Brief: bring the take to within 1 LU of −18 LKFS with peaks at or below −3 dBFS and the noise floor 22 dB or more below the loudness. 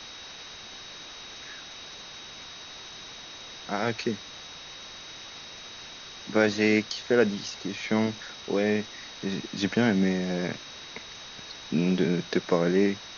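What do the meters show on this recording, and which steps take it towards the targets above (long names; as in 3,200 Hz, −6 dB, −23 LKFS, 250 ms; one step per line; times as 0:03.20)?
interfering tone 3,800 Hz; level of the tone −45 dBFS; background noise floor −44 dBFS; target noise floor −49 dBFS; integrated loudness −27.0 LKFS; sample peak −9.5 dBFS; target loudness −18.0 LKFS
→ notch filter 3,800 Hz, Q 30
broadband denoise 6 dB, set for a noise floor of −44 dBFS
level +9 dB
brickwall limiter −3 dBFS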